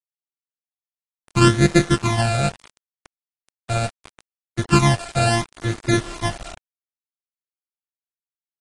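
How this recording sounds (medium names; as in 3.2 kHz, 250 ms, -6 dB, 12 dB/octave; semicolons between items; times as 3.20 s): a buzz of ramps at a fixed pitch in blocks of 128 samples; phasing stages 12, 0.73 Hz, lowest notch 320–1000 Hz; a quantiser's noise floor 6-bit, dither none; AAC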